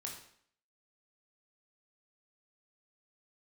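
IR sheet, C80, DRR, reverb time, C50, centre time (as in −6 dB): 8.5 dB, −0.5 dB, 0.60 s, 5.5 dB, 31 ms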